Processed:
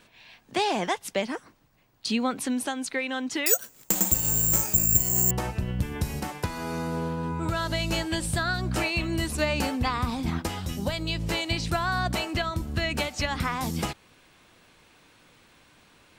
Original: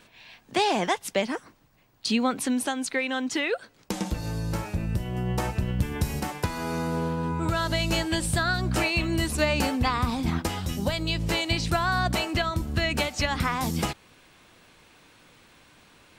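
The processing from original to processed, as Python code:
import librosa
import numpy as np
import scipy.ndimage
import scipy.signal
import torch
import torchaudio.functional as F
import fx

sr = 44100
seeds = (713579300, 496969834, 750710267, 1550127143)

y = fx.resample_bad(x, sr, factor=6, down='none', up='zero_stuff', at=(3.46, 5.31))
y = F.gain(torch.from_numpy(y), -2.0).numpy()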